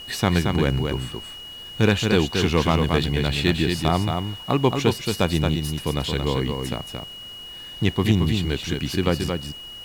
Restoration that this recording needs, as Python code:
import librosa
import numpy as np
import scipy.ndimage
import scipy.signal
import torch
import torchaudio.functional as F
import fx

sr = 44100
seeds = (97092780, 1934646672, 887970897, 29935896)

y = fx.fix_declip(x, sr, threshold_db=-7.5)
y = fx.notch(y, sr, hz=2900.0, q=30.0)
y = fx.noise_reduce(y, sr, print_start_s=7.09, print_end_s=7.59, reduce_db=29.0)
y = fx.fix_echo_inverse(y, sr, delay_ms=225, level_db=-5.0)